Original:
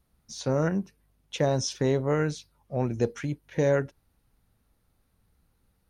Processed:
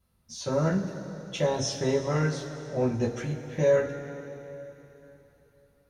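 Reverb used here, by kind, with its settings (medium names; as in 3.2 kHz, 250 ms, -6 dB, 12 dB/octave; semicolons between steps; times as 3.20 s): two-slope reverb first 0.2 s, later 3.5 s, from -19 dB, DRR -5.5 dB; trim -6 dB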